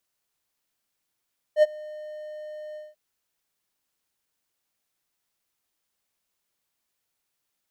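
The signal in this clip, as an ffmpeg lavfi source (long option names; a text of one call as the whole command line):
ffmpeg -f lavfi -i "aevalsrc='0.335*(1-4*abs(mod(609*t+0.25,1)-0.5))':duration=1.389:sample_rate=44100,afade=type=in:duration=0.067,afade=type=out:start_time=0.067:duration=0.028:silence=0.0631,afade=type=out:start_time=1.2:duration=0.189" out.wav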